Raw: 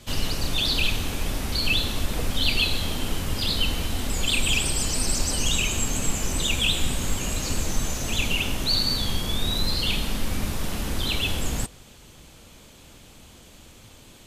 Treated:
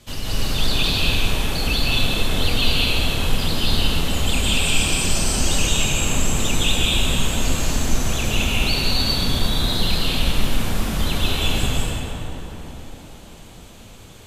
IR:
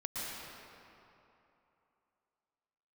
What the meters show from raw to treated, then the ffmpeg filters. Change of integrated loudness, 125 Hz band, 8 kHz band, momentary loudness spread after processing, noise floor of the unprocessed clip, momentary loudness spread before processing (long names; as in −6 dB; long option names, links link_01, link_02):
+4.5 dB, +6.0 dB, +3.0 dB, 7 LU, −49 dBFS, 7 LU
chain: -filter_complex "[1:a]atrim=start_sample=2205,asetrate=31311,aresample=44100[link_01];[0:a][link_01]afir=irnorm=-1:irlink=0"